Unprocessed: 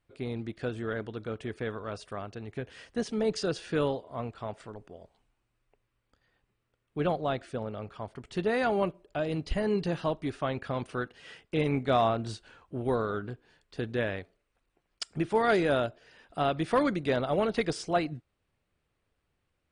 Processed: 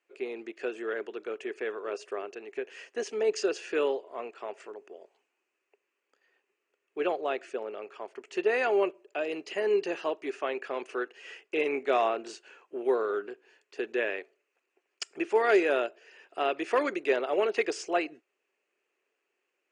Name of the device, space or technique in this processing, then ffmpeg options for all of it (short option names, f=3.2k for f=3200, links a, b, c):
phone speaker on a table: -filter_complex "[0:a]highpass=f=340:w=0.5412,highpass=f=340:w=1.3066,equalizer=f=390:t=q:w=4:g=9,equalizer=f=1.8k:t=q:w=4:g=4,equalizer=f=2.6k:t=q:w=4:g=10,equalizer=f=3.7k:t=q:w=4:g=-7,equalizer=f=6.7k:t=q:w=4:g=7,lowpass=f=8.5k:w=0.5412,lowpass=f=8.5k:w=1.3066,asettb=1/sr,asplit=3[a][b][c];[a]atrim=end=1.844[d];[b]atrim=start=1.84:end=2.35,asetpts=PTS-STARTPTS,afade=t=in:d=0.004:c=qsin,afade=t=out:st=0.506:d=0.004:c=qsin,equalizer=f=400:t=o:w=0.77:g=5.5[e];[c]atrim=start=2.346[f];[d][e]acrossfade=d=0.004:c1=hsin:c2=qsin[g];[g][f]acrossfade=d=0.004:c1=qsin:c2=hsin,volume=-1.5dB"